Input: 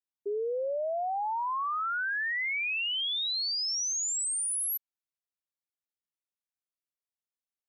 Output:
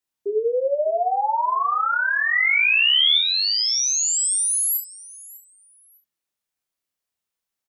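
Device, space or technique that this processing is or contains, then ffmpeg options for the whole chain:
slapback doubling: -filter_complex "[0:a]asettb=1/sr,asplit=3[a][b][c];[a]atrim=end=2.334[d];[b]atrim=start=2.33:end=3.18,asetpts=PTS-STARTPTS,afade=t=in:d=0.004:c=qsin,afade=t=out:st=0.846:d=0.004:c=qsin,tiltshelf=f=1.3k:g=-6.5[e];[c]atrim=start=3.176[f];[d][e]acrossfade=d=0.004:c1=hsin:c2=qsin[g];[g][f]acrossfade=d=0.004:c1=qsin:c2=hsin,aecho=1:1:601|1202:0.1|0.023,asplit=3[h][i][j];[i]adelay=30,volume=-4dB[k];[j]adelay=68,volume=-11dB[l];[h][k][l]amix=inputs=3:normalize=0,volume=8dB"

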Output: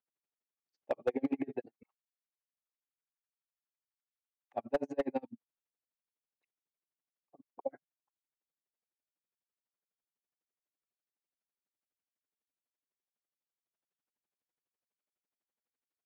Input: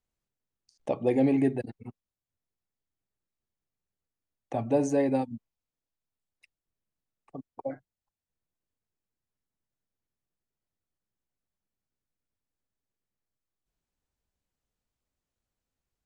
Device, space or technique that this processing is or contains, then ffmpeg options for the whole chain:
helicopter radio: -filter_complex "[0:a]highpass=300,lowpass=2.8k,aeval=exprs='val(0)*pow(10,-39*(0.5-0.5*cos(2*PI*12*n/s))/20)':c=same,asoftclip=type=hard:threshold=-23dB,asettb=1/sr,asplit=3[a][b][c];[a]atrim=end=1.834[d];[b]atrim=start=1.83:end=4.53,asetpts=PTS-STARTPTS,afade=t=in:d=0.004:c=qsin,afade=t=out:st=2.696:d=0.004:c=qsin,highpass=f=920:w=0.5412,highpass=f=920:w=1.3066[e];[c]atrim=start=4.526[f];[d][e]acrossfade=d=0.004:c1=hsin:c2=qsin[g];[g][f]acrossfade=d=0.004:c1=qsin:c2=hsin"

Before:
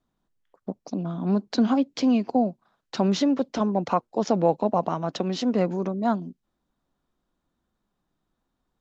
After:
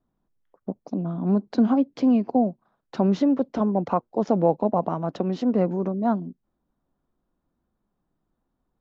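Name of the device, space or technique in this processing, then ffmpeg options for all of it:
through cloth: -af "highshelf=f=2.1k:g=-16.5,volume=2dB"

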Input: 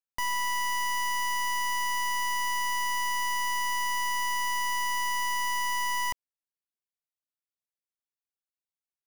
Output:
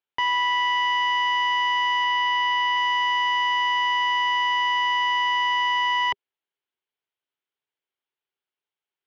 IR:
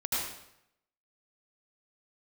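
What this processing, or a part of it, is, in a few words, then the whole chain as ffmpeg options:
guitar cabinet: -filter_complex "[0:a]highpass=110,equalizer=f=200:t=q:w=4:g=-8,equalizer=f=400:t=q:w=4:g=9,equalizer=f=880:t=q:w=4:g=5,equalizer=f=1.5k:t=q:w=4:g=4,equalizer=f=2.2k:t=q:w=4:g=3,equalizer=f=3.1k:t=q:w=4:g=7,lowpass=f=3.9k:w=0.5412,lowpass=f=3.9k:w=1.3066,asettb=1/sr,asplit=3[a][b][c];[a]atrim=end=2.044[d];[b]atrim=start=2.04:end=2.77,asetpts=PTS-STARTPTS,afade=t=in:d=0.004:c=qsin,afade=t=out:st=0.726:d=0.004:c=qsin,lowpass=f=6.4k:w=0.5412,lowpass=f=6.4k:w=1.3066[e];[c]atrim=start=2.766[f];[d][e]acrossfade=d=0.004:c1=hsin:c2=qsin[g];[g][f]acrossfade=d=0.004:c1=qsin:c2=hsin,volume=4.5dB"

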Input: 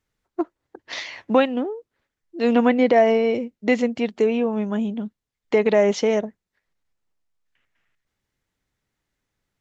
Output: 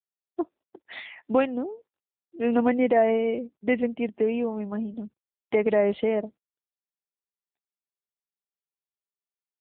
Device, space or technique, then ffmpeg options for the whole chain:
mobile call with aggressive noise cancelling: -af "highpass=110,afftdn=nr=31:nf=-42,volume=-4dB" -ar 8000 -c:a libopencore_amrnb -b:a 7950

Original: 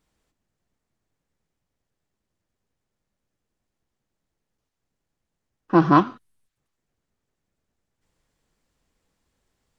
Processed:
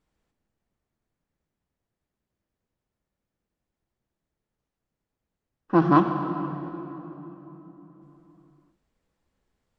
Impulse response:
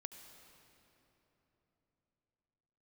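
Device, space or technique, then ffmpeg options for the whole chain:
swimming-pool hall: -filter_complex "[1:a]atrim=start_sample=2205[a];[0:a][a]afir=irnorm=-1:irlink=0,highshelf=f=3.6k:g=-8,volume=2.5dB"

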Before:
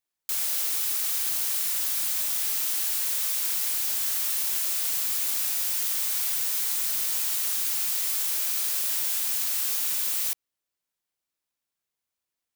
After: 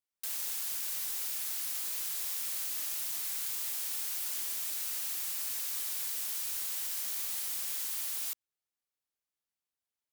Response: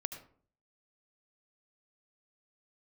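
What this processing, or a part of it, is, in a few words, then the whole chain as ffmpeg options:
nightcore: -af "asetrate=54684,aresample=44100,volume=-6.5dB"

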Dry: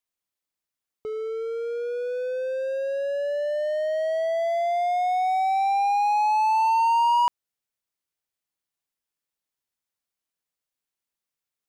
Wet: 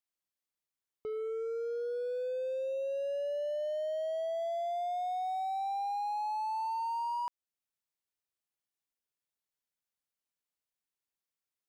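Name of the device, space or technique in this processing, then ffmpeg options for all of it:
limiter into clipper: -af "alimiter=limit=-22dB:level=0:latency=1:release=414,asoftclip=type=hard:threshold=-26dB,volume=-6dB"

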